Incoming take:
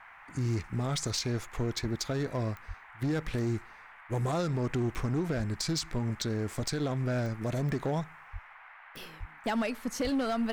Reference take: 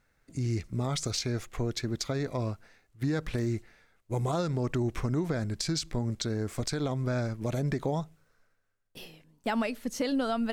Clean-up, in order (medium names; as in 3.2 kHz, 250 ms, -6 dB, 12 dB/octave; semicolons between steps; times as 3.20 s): clip repair -25 dBFS; de-click; de-plosive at 1.81/2.67/5.36/8.32/9.19/10.03 s; noise print and reduce 16 dB